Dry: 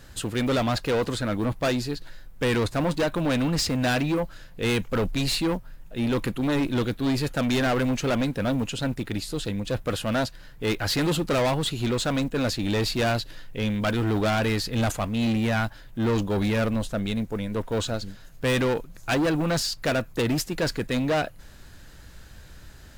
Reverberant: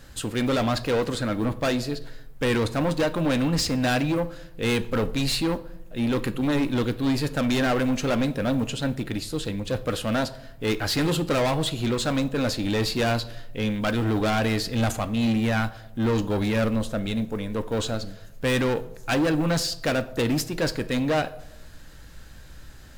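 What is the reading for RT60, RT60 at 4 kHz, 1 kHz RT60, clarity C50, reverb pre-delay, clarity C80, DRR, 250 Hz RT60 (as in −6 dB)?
0.85 s, 0.50 s, 0.70 s, 16.5 dB, 4 ms, 19.5 dB, 11.0 dB, 1.0 s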